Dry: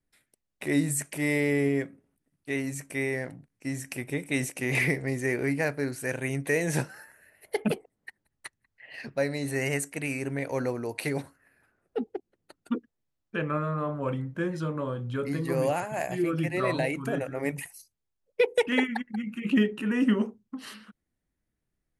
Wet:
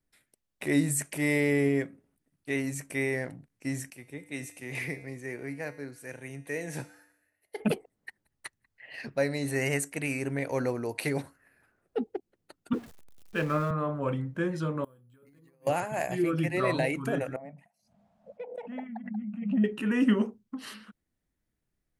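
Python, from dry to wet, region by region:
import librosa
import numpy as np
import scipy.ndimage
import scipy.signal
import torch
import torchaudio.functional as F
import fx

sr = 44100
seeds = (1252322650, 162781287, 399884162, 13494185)

y = fx.chain(x, sr, fx.comb_fb(f0_hz=98.0, decay_s=1.0, harmonics='odd', damping=0.0, mix_pct=70),
    fx.band_widen(depth_pct=40), at=(3.9, 7.6))
y = fx.chain(y, sr, fx.zero_step(step_db=-41.0),
    fx.band_widen(depth_pct=40), at=(12.73, 13.71))
y = fx.chain(y, sr, fx.resample_bad(factor=4, down='filtered', up='hold'),
    fx.over_compress(threshold_db=-31.0, ratio=-0.5),
    fx.gate_flip(shuts_db=-29.0, range_db=-28), at=(14.84, 15.67))
y = fx.chain(y, sr, fx.double_bandpass(hz=370.0, octaves=1.7),
    fx.pre_swell(db_per_s=65.0), at=(17.36, 19.64))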